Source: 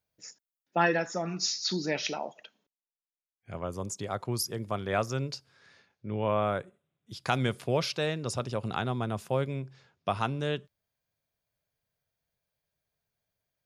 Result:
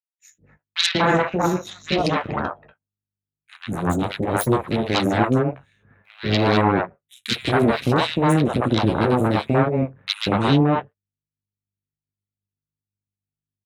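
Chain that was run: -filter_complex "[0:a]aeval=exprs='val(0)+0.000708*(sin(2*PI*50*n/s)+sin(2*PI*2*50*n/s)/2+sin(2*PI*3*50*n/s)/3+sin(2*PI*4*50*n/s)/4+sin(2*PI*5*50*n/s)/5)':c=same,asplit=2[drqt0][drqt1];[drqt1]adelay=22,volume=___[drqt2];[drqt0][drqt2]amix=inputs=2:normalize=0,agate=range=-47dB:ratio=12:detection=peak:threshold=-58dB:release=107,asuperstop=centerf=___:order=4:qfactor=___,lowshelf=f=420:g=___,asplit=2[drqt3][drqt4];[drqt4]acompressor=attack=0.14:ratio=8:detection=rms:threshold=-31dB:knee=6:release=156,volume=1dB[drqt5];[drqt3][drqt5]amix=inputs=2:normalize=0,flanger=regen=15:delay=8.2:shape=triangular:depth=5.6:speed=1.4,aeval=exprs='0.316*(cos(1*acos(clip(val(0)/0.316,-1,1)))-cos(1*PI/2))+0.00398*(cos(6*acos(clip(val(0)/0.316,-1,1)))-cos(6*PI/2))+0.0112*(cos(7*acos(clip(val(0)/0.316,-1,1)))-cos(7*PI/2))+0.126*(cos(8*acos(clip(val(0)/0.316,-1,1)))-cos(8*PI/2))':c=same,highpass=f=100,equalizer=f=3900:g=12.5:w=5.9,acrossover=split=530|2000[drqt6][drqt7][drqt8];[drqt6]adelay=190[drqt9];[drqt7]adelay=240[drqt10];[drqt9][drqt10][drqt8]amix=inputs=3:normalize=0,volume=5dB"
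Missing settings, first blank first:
-13dB, 4700, 0.9, 10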